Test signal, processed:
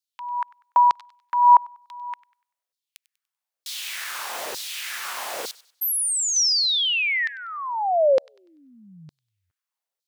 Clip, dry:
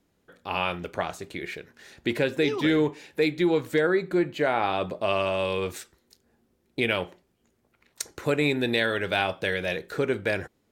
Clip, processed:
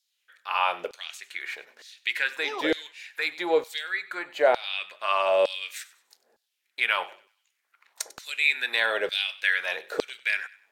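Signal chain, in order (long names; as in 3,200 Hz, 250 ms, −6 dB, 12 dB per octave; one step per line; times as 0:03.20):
auto-filter high-pass saw down 1.1 Hz 470–4,600 Hz
delay with a high-pass on its return 97 ms, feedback 33%, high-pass 1,400 Hz, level −18 dB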